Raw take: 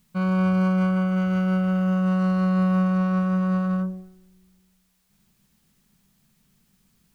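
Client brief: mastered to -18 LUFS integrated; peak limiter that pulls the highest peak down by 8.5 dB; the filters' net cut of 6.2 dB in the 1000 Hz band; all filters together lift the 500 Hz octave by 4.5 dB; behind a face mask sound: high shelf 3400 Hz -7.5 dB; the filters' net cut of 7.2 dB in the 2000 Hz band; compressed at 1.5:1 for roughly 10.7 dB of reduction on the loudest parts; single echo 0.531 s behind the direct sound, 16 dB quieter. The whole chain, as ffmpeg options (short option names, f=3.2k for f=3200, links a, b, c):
-af "equalizer=f=500:t=o:g=8,equalizer=f=1k:t=o:g=-8.5,equalizer=f=2k:t=o:g=-5,acompressor=threshold=-49dB:ratio=1.5,alimiter=level_in=8.5dB:limit=-24dB:level=0:latency=1,volume=-8.5dB,highshelf=f=3.4k:g=-7.5,aecho=1:1:531:0.158,volume=21.5dB"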